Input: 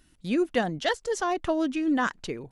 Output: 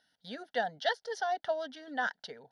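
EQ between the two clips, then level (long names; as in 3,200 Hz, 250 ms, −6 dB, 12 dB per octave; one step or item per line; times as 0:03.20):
loudspeaker in its box 410–8,600 Hz, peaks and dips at 550 Hz −5 dB, 1,100 Hz −5 dB, 2,100 Hz −7 dB, 4,000 Hz −3 dB, 6,700 Hz −7 dB
phaser with its sweep stopped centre 1,700 Hz, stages 8
0.0 dB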